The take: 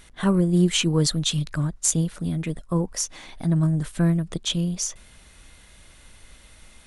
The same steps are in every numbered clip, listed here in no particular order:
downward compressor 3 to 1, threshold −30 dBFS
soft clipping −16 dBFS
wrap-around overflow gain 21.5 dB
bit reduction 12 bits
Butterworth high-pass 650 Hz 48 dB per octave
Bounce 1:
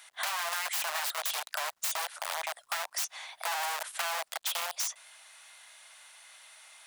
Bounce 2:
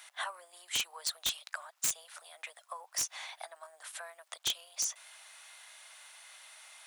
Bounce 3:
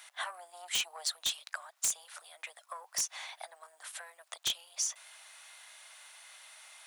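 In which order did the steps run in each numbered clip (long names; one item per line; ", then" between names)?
wrap-around overflow, then soft clipping, then Butterworth high-pass, then bit reduction, then downward compressor
downward compressor, then bit reduction, then Butterworth high-pass, then wrap-around overflow, then soft clipping
soft clipping, then downward compressor, then bit reduction, then Butterworth high-pass, then wrap-around overflow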